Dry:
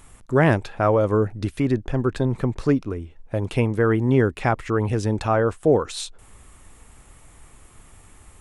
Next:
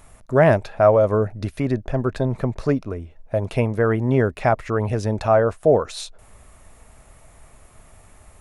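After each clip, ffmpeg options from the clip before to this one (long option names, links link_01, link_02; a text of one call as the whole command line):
ffmpeg -i in.wav -af "equalizer=frequency=315:width_type=o:width=0.33:gain=-5,equalizer=frequency=630:width_type=o:width=0.33:gain=10,equalizer=frequency=3150:width_type=o:width=0.33:gain=-4,equalizer=frequency=8000:width_type=o:width=0.33:gain=-5" out.wav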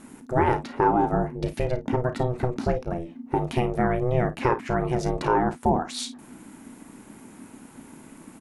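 ffmpeg -i in.wav -af "acompressor=threshold=-25dB:ratio=2,aeval=exprs='val(0)*sin(2*PI*250*n/s)':channel_layout=same,aecho=1:1:33|52:0.251|0.188,volume=4dB" out.wav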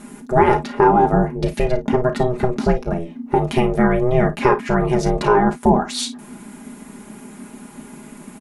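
ffmpeg -i in.wav -af "aecho=1:1:4.9:0.65,volume=6dB" out.wav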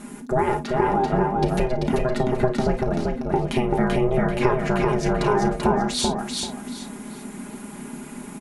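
ffmpeg -i in.wav -filter_complex "[0:a]acompressor=threshold=-20dB:ratio=3,asplit=2[link_01][link_02];[link_02]aecho=0:1:388|776|1164|1552:0.708|0.184|0.0479|0.0124[link_03];[link_01][link_03]amix=inputs=2:normalize=0" out.wav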